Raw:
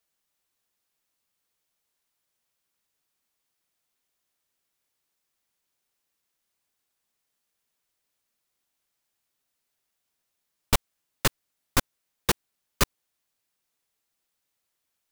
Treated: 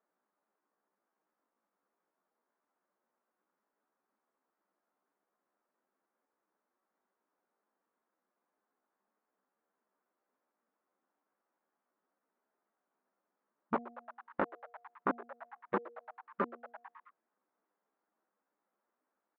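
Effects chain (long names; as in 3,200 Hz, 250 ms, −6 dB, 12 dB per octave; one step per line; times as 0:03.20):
linear-phase brick-wall high-pass 180 Hz
echo with shifted repeats 85 ms, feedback 65%, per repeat +140 Hz, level −18 dB
downward compressor 3 to 1, threshold −36 dBFS, peak gain reduction 13.5 dB
low-pass filter 1,400 Hz 24 dB per octave
hum removal 237.2 Hz, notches 3
tempo change 0.78×
level +6 dB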